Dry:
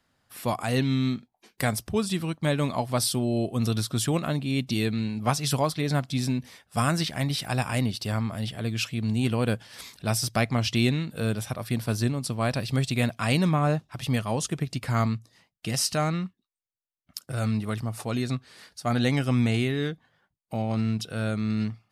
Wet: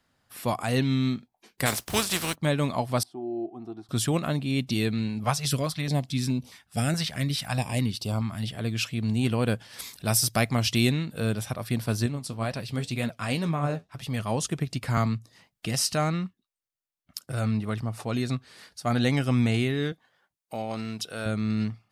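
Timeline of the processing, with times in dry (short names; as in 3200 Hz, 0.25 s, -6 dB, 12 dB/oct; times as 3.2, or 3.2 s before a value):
1.65–2.34 spectral contrast lowered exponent 0.42
3.03–3.89 double band-pass 510 Hz, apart 1.1 oct
5.24–8.5 stepped notch 4.7 Hz 300–1800 Hz
9.79–10.92 high shelf 8200 Hz +11.5 dB
12.06–14.2 flange 2 Hz, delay 4.1 ms, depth 8.4 ms, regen +59%
14.97–15.66 three-band squash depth 40%
17.4–18.13 high shelf 4700 Hz -> 7800 Hz -8 dB
19.92–21.26 tone controls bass -12 dB, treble +3 dB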